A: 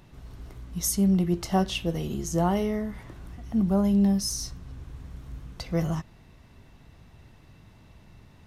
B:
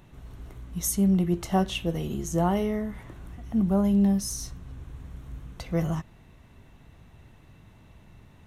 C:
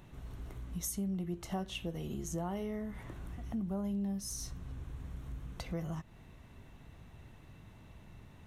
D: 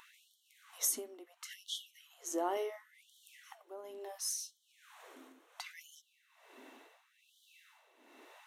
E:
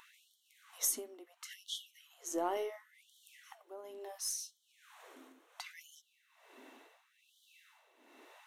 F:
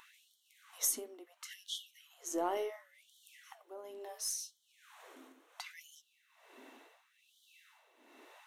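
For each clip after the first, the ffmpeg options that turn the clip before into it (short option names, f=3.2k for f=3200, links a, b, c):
-af "equalizer=f=4.9k:w=3.4:g=-8.5"
-af "acompressor=threshold=-36dB:ratio=3,volume=-2dB"
-af "tremolo=f=1.2:d=0.74,afftfilt=real='re*gte(b*sr/1024,220*pow(3000/220,0.5+0.5*sin(2*PI*0.71*pts/sr)))':imag='im*gte(b*sr/1024,220*pow(3000/220,0.5+0.5*sin(2*PI*0.71*pts/sr)))':win_size=1024:overlap=0.75,volume=6.5dB"
-af "aeval=exprs='0.112*(cos(1*acos(clip(val(0)/0.112,-1,1)))-cos(1*PI/2))+0.001*(cos(6*acos(clip(val(0)/0.112,-1,1)))-cos(6*PI/2))+0.00158*(cos(7*acos(clip(val(0)/0.112,-1,1)))-cos(7*PI/2))':c=same"
-af "flanger=delay=2.7:depth=3.7:regen=-90:speed=0.86:shape=triangular,volume=5dB"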